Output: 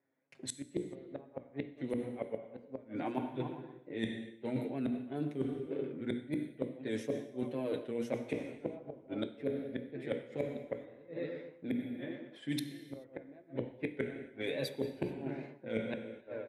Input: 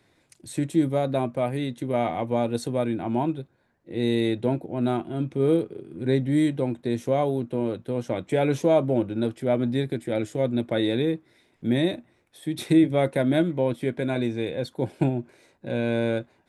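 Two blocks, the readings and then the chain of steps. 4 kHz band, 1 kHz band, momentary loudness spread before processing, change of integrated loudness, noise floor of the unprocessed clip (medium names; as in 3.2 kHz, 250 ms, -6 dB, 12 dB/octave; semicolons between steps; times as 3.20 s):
-12.5 dB, -17.0 dB, 9 LU, -14.5 dB, -65 dBFS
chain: flange 1.3 Hz, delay 6.7 ms, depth 1.3 ms, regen +22%; wow and flutter 120 cents; RIAA curve recording; on a send: feedback delay 120 ms, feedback 47%, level -16 dB; on the sum: inverted gate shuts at -22 dBFS, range -38 dB; level-controlled noise filter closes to 1.2 kHz, open at -31.5 dBFS; hum notches 60/120/180/240/300/360/420/480 Hz; gate with hold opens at -60 dBFS; graphic EQ 125/250/500/2000/8000 Hz +7/+9/+8/+8/-6 dB; gated-style reverb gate 460 ms falling, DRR 11.5 dB; reverse; compression 12:1, threshold -35 dBFS, peak gain reduction 16.5 dB; reverse; trim +2.5 dB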